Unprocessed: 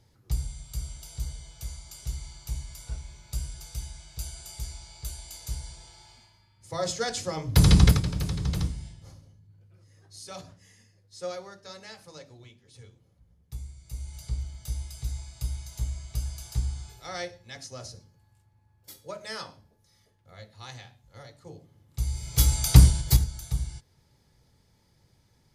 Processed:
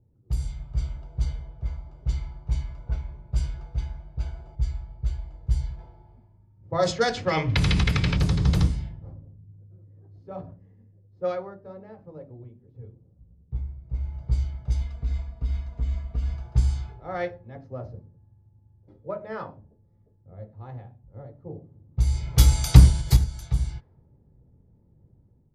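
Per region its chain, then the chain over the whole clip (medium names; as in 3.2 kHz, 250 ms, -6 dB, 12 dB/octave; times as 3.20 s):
4.55–5.79 s: bass shelf 230 Hz +11.5 dB + feedback comb 130 Hz, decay 0.56 s
7.26–8.17 s: peaking EQ 2.4 kHz +12.5 dB 1.4 oct + compression 10:1, threshold -24 dBFS
14.81–16.34 s: band-stop 830 Hz, Q 5.5 + compression 5:1, threshold -29 dBFS + comb 4.3 ms, depth 61%
whole clip: low-pass 3.4 kHz 6 dB/octave; level-controlled noise filter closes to 380 Hz, open at -24 dBFS; level rider gain up to 7.5 dB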